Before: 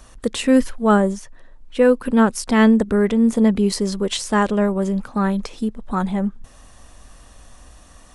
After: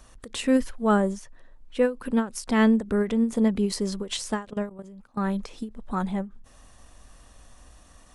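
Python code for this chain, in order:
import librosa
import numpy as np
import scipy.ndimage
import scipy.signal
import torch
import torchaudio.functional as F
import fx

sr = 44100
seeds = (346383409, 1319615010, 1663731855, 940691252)

y = fx.level_steps(x, sr, step_db=19, at=(4.44, 5.28), fade=0.02)
y = fx.end_taper(y, sr, db_per_s=200.0)
y = y * librosa.db_to_amplitude(-6.0)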